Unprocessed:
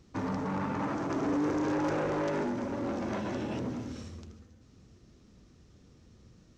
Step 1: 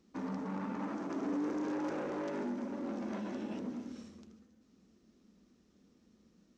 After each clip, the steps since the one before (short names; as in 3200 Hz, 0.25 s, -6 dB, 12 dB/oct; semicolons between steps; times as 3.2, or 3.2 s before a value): resonant low shelf 160 Hz -8.5 dB, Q 3; gain -8.5 dB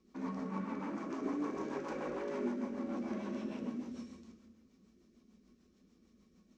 two-slope reverb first 0.83 s, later 2.5 s, DRR 1 dB; rotary speaker horn 6.7 Hz; small resonant body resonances 1100/2300 Hz, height 12 dB, ringing for 90 ms; gain -1.5 dB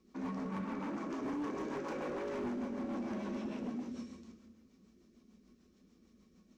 hard clip -36 dBFS, distortion -13 dB; gain +1.5 dB